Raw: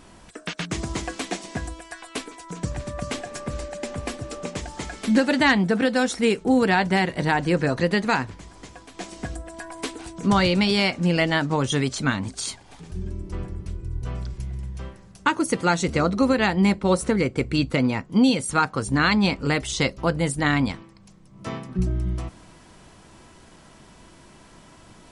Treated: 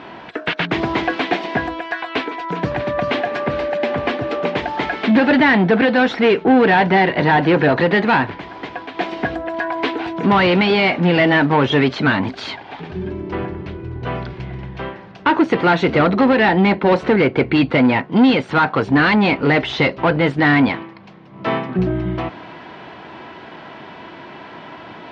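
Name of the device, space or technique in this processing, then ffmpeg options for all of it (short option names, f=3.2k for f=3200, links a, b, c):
overdrive pedal into a guitar cabinet: -filter_complex "[0:a]asplit=2[a][b];[b]highpass=f=720:p=1,volume=24dB,asoftclip=type=tanh:threshold=-6.5dB[c];[a][c]amix=inputs=2:normalize=0,lowpass=f=1.3k:p=1,volume=-6dB,highpass=92,equalizer=f=200:t=q:w=4:g=-3,equalizer=f=530:t=q:w=4:g=-4,equalizer=f=1.2k:t=q:w=4:g=-5,lowpass=f=3.8k:w=0.5412,lowpass=f=3.8k:w=1.3066,volume=4dB"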